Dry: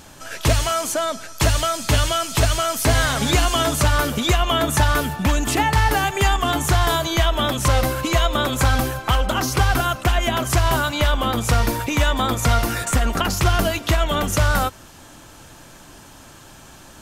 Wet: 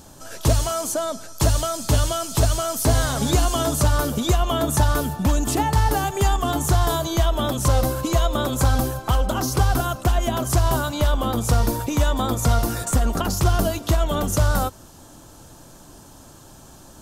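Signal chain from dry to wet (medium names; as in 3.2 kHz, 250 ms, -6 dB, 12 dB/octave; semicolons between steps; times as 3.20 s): peaking EQ 2.2 kHz -12 dB 1.4 oct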